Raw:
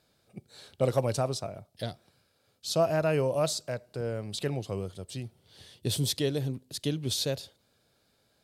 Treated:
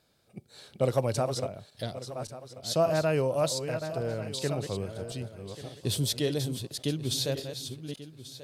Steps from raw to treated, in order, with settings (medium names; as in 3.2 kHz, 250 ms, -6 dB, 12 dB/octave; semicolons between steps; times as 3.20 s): backward echo that repeats 569 ms, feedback 45%, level -8.5 dB